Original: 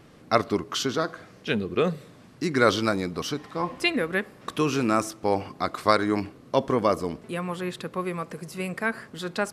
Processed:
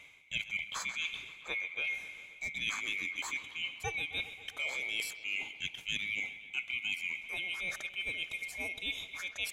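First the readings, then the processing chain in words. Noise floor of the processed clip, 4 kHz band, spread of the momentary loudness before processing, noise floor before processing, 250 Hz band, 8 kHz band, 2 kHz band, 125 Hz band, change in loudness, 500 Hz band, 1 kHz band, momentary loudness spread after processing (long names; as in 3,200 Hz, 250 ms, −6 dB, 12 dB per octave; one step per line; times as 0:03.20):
−53 dBFS, −3.5 dB, 10 LU, −51 dBFS, −28.5 dB, −6.0 dB, −2.5 dB, −22.5 dB, −9.0 dB, −27.0 dB, −21.5 dB, 5 LU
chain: neighbouring bands swapped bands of 2,000 Hz
reversed playback
downward compressor 4 to 1, threshold −34 dBFS, peak gain reduction 17 dB
reversed playback
bucket-brigade delay 133 ms, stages 4,096, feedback 74%, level −15.5 dB
level −1.5 dB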